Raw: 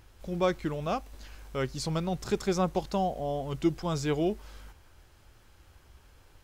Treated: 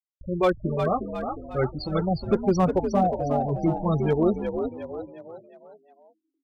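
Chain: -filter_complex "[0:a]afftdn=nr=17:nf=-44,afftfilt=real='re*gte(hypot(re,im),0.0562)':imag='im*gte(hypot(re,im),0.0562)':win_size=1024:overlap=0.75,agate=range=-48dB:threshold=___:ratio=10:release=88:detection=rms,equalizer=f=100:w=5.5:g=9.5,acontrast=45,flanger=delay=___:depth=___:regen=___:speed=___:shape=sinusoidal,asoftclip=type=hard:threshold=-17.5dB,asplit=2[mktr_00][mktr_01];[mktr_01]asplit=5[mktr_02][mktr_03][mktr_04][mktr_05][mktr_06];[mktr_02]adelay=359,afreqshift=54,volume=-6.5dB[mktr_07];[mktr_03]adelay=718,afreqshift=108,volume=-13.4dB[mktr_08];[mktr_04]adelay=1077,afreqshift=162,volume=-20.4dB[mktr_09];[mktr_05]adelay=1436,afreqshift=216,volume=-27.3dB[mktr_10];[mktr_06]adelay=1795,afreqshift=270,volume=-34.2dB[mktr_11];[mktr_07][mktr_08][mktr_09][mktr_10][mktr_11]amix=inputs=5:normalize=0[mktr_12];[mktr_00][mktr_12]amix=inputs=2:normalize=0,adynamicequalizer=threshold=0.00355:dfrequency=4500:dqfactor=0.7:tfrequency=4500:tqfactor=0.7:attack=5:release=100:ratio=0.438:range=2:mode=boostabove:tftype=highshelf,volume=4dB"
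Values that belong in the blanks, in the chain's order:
-51dB, 0.6, 6.7, -37, 0.41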